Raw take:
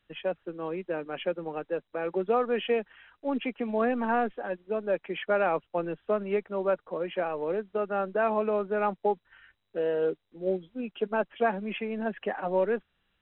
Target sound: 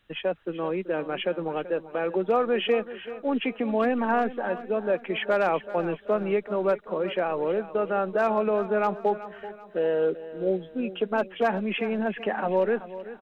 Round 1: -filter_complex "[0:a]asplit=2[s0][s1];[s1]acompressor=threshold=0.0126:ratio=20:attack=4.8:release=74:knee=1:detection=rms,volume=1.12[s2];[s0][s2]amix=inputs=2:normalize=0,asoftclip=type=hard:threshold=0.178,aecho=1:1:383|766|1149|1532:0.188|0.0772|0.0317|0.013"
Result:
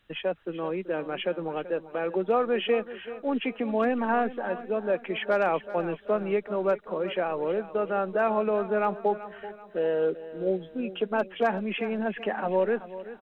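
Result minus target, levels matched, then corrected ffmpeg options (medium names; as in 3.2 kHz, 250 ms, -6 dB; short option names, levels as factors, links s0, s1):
compression: peak gain reduction +6 dB
-filter_complex "[0:a]asplit=2[s0][s1];[s1]acompressor=threshold=0.0266:ratio=20:attack=4.8:release=74:knee=1:detection=rms,volume=1.12[s2];[s0][s2]amix=inputs=2:normalize=0,asoftclip=type=hard:threshold=0.178,aecho=1:1:383|766|1149|1532:0.188|0.0772|0.0317|0.013"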